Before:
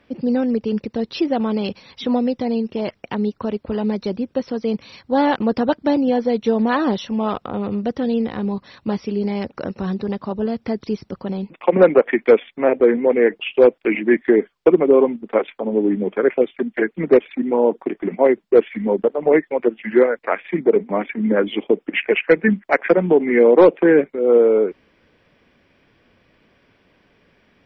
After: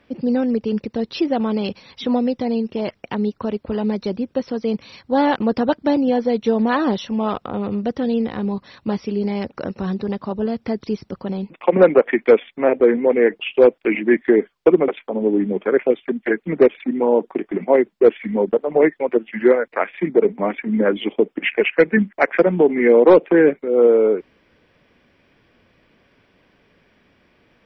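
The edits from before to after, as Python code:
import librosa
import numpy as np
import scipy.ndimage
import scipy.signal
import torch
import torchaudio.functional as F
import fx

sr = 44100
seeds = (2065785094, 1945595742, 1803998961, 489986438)

y = fx.edit(x, sr, fx.cut(start_s=14.88, length_s=0.51), tone=tone)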